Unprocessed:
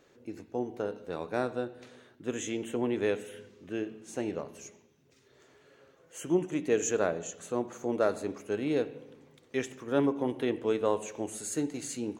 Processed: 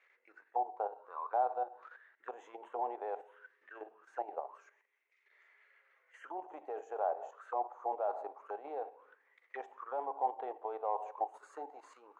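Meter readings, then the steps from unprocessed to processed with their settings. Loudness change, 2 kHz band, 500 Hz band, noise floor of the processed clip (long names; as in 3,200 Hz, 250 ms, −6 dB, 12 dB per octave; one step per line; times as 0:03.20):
−7.5 dB, −12.5 dB, −10.0 dB, −75 dBFS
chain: parametric band 1,000 Hz +9.5 dB 1.6 octaves
soft clipping −13 dBFS, distortion −19 dB
output level in coarse steps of 10 dB
envelope filter 780–2,200 Hz, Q 8.9, down, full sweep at −32.5 dBFS
low shelf with overshoot 290 Hz −12.5 dB, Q 1.5
level +7.5 dB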